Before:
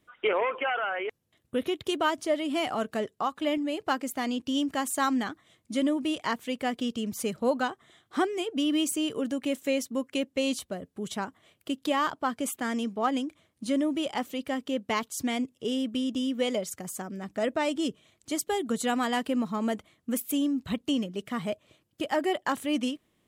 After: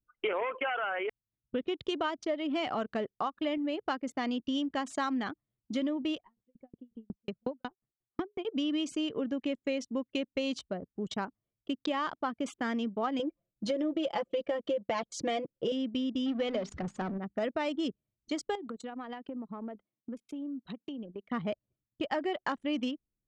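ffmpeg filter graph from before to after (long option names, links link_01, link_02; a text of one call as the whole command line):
ffmpeg -i in.wav -filter_complex "[0:a]asettb=1/sr,asplit=3[link_01][link_02][link_03];[link_01]atrim=end=6.194[link_04];[link_02]atrim=start=6.19:end=8.45,asetpts=PTS-STARTPTS,afade=type=in:duration=0.004:curve=qsin,afade=type=out:start_time=2.256:duration=0.004:curve=qsin,lowpass=frequency=4000:poles=1,acrossover=split=410|3000[link_05][link_06][link_07];[link_06]acompressor=threshold=-30dB:ratio=5:attack=3.2:release=140:knee=2.83:detection=peak[link_08];[link_05][link_08][link_07]amix=inputs=3:normalize=0,aeval=exprs='val(0)*pow(10,-30*if(lt(mod(5.5*n/s,1),2*abs(5.5)/1000),1-mod(5.5*n/s,1)/(2*abs(5.5)/1000),(mod(5.5*n/s,1)-2*abs(5.5)/1000)/(1-2*abs(5.5)/1000))/20)':channel_layout=same[link_09];[link_03]atrim=start=8.446[link_10];[link_04][link_09]acrossfade=duration=0.004:curve1=hsin:curve2=qsin[link_11];[link_11][link_10]acrossfade=duration=0.004:curve1=qsin:curve2=hsin,asettb=1/sr,asplit=3[link_12][link_13][link_14];[link_12]atrim=end=13.194[link_15];[link_13]atrim=start=13.19:end=15.72,asetpts=PTS-STARTPTS,afade=type=in:duration=0.004:curve=qsin,afade=type=out:start_time=2.526:duration=0.004:curve=qsin,equalizer=frequency=560:width_type=o:width=0.75:gain=11,aecho=1:1:5.9:0.88,atrim=end_sample=111573,acompressor=threshold=-21dB:ratio=4:attack=3.2:release=140:knee=1:detection=peak[link_16];[link_14]atrim=start=15.716[link_17];[link_15][link_16]acrossfade=duration=0.004:curve1=hsin:curve2=qsin[link_18];[link_18][link_17]acrossfade=duration=0.004:curve1=qsin:curve2=hsin,asettb=1/sr,asplit=3[link_19][link_20][link_21];[link_19]atrim=end=16.264[link_22];[link_20]atrim=start=16.26:end=17.18,asetpts=PTS-STARTPTS,afade=type=in:duration=0.004:curve=qsin,afade=type=out:start_time=0.916:duration=0.004:curve=qsin,aeval=exprs='val(0)+0.5*0.02*sgn(val(0))':channel_layout=same,aemphasis=mode=reproduction:type=cd,bandreject=frequency=50:width_type=h:width=6,bandreject=frequency=100:width_type=h:width=6,bandreject=frequency=150:width_type=h:width=6,bandreject=frequency=200:width_type=h:width=6,bandreject=frequency=250:width_type=h:width=6,bandreject=frequency=300:width_type=h:width=6,bandreject=frequency=350:width_type=h:width=6,bandreject=frequency=400:width_type=h:width=6[link_23];[link_21]atrim=start=17.176[link_24];[link_22][link_23]acrossfade=duration=0.004:curve1=hsin:curve2=qsin[link_25];[link_25][link_24]acrossfade=duration=0.004:curve1=qsin:curve2=hsin,asettb=1/sr,asplit=3[link_26][link_27][link_28];[link_26]atrim=end=18.554[link_29];[link_27]atrim=start=18.55:end=21.3,asetpts=PTS-STARTPTS,afade=type=in:duration=0.004:curve=qsin,afade=type=out:start_time=2.746:duration=0.004:curve=qsin,highpass=220,acompressor=threshold=-35dB:ratio=8:attack=3.2:release=140:knee=1:detection=peak[link_30];[link_28]atrim=start=21.296[link_31];[link_29][link_30]acrossfade=duration=0.004:curve1=hsin:curve2=qsin[link_32];[link_32][link_31]acrossfade=duration=0.004:curve1=qsin:curve2=hsin,anlmdn=1.58,lowpass=frequency=5800:width=0.5412,lowpass=frequency=5800:width=1.3066,acompressor=threshold=-29dB:ratio=4" out.wav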